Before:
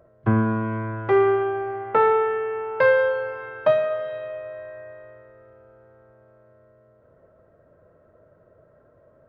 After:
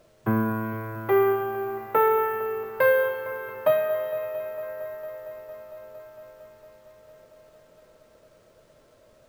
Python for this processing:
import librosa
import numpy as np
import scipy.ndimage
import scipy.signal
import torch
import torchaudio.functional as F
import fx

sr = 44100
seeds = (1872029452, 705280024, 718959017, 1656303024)

p1 = scipy.signal.sosfilt(scipy.signal.butter(2, 130.0, 'highpass', fs=sr, output='sos'), x)
p2 = fx.dmg_noise_colour(p1, sr, seeds[0], colour='pink', level_db=-62.0)
p3 = p2 + fx.echo_wet_lowpass(p2, sr, ms=228, feedback_pct=84, hz=3100.0, wet_db=-16.5, dry=0)
p4 = np.repeat(p3[::3], 3)[:len(p3)]
y = p4 * librosa.db_to_amplitude(-2.5)